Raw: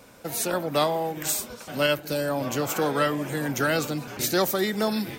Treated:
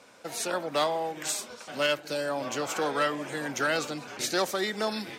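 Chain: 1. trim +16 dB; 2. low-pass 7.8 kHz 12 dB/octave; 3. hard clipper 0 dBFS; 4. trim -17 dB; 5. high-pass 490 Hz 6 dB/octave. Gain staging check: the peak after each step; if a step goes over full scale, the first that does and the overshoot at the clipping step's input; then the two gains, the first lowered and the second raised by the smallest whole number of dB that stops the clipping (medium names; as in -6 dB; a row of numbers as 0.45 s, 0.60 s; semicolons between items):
+5.0 dBFS, +5.0 dBFS, 0.0 dBFS, -17.0 dBFS, -14.5 dBFS; step 1, 5.0 dB; step 1 +11 dB, step 4 -12 dB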